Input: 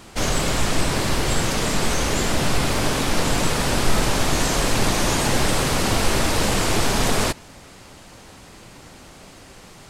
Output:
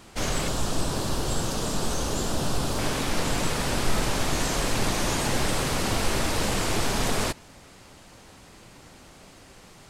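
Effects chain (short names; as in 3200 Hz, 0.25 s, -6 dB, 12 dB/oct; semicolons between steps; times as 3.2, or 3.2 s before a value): 0.48–2.79 bell 2100 Hz -11.5 dB 0.63 oct; gain -5.5 dB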